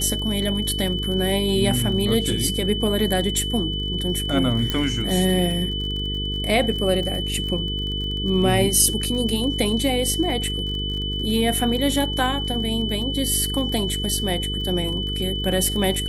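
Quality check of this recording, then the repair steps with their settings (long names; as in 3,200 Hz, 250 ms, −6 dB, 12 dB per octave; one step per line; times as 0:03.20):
mains buzz 50 Hz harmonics 9 −28 dBFS
surface crackle 38 per second −30 dBFS
whistle 3,000 Hz −27 dBFS
0:04.70: click −9 dBFS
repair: click removal
hum removal 50 Hz, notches 9
notch filter 3,000 Hz, Q 30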